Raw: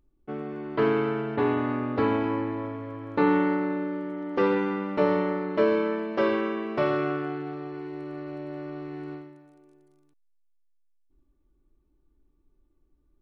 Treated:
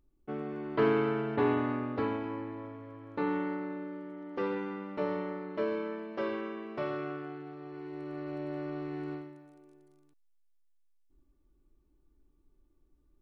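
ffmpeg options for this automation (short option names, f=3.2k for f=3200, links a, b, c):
-af "volume=6dB,afade=t=out:st=1.52:d=0.68:silence=0.446684,afade=t=in:st=7.56:d=0.88:silence=0.354813"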